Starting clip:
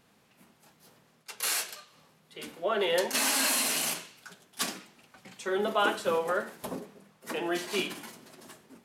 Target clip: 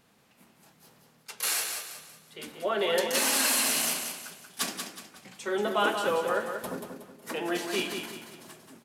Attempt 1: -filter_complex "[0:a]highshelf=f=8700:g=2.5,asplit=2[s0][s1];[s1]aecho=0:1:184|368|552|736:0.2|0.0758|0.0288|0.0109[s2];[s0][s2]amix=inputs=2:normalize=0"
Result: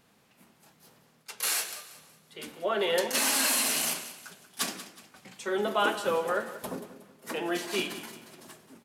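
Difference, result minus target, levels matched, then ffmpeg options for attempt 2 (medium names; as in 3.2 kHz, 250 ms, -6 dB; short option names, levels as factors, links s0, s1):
echo-to-direct -7.5 dB
-filter_complex "[0:a]highshelf=f=8700:g=2.5,asplit=2[s0][s1];[s1]aecho=0:1:184|368|552|736:0.473|0.18|0.0683|0.026[s2];[s0][s2]amix=inputs=2:normalize=0"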